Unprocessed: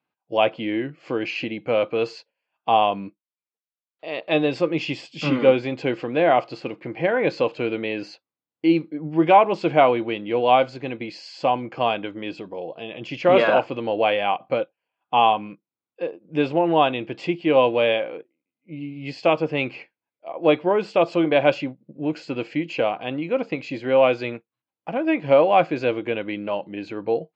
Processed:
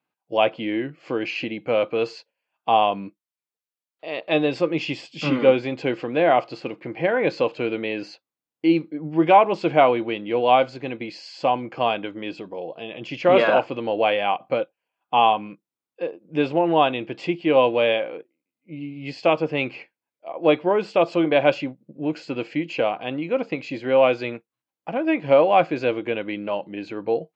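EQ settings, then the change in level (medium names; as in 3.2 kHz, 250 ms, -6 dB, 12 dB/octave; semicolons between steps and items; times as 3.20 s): peaking EQ 66 Hz -5 dB 1.3 oct; 0.0 dB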